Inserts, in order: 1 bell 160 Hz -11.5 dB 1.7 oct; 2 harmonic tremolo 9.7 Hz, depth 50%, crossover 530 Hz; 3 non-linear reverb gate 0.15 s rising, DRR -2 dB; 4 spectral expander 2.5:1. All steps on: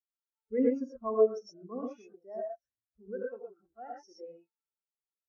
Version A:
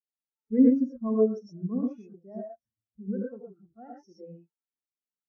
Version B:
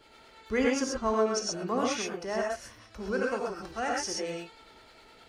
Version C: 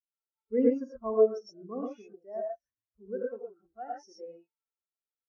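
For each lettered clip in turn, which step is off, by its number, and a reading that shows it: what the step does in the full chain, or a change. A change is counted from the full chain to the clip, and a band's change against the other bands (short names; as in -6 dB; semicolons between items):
1, crest factor change -2.5 dB; 4, 2 kHz band +18.0 dB; 2, momentary loudness spread change -1 LU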